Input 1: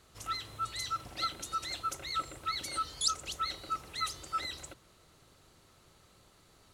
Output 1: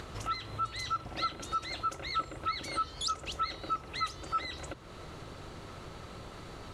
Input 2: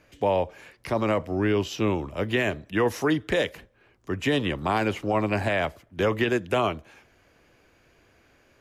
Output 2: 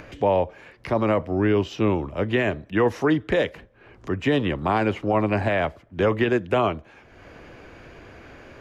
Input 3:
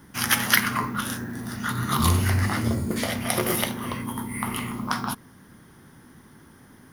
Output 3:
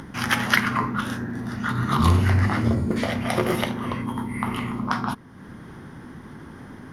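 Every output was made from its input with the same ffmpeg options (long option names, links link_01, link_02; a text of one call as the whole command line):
ffmpeg -i in.wav -af "aemphasis=mode=reproduction:type=75fm,acompressor=mode=upward:threshold=-34dB:ratio=2.5,volume=2.5dB" out.wav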